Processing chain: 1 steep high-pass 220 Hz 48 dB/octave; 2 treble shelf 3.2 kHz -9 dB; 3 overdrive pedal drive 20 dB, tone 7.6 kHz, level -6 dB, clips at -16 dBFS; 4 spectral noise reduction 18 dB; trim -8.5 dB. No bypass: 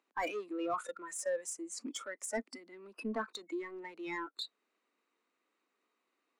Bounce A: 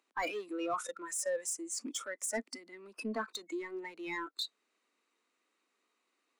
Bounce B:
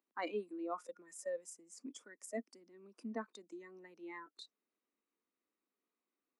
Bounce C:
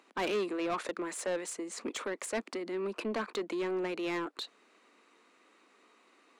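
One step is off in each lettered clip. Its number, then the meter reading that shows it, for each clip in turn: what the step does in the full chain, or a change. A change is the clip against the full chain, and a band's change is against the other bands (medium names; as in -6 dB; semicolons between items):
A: 2, 8 kHz band +5.0 dB; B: 3, crest factor change +4.0 dB; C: 4, 125 Hz band +5.0 dB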